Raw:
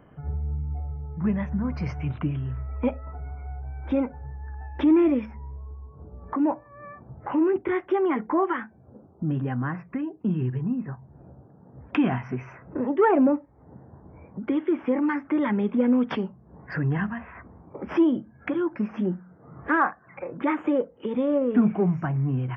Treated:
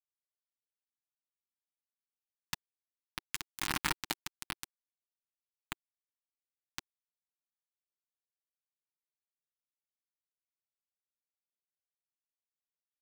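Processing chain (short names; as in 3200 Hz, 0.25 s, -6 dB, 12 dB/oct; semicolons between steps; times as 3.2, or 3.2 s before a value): per-bin compression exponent 0.4; Doppler pass-by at 6.51, 29 m/s, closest 5.6 m; on a send at -14 dB: dynamic EQ 2900 Hz, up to -8 dB, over -54 dBFS, Q 0.8 + reverb RT60 1.4 s, pre-delay 62 ms; on the sum: compressor 4:1, threshold -46 dBFS, peak gain reduction 22.5 dB; speed mistake 45 rpm record played at 78 rpm; bit-crush 6-bit; band shelf 540 Hz -12.5 dB 1 oct; comb 6.5 ms, depth 32%; gain +14.5 dB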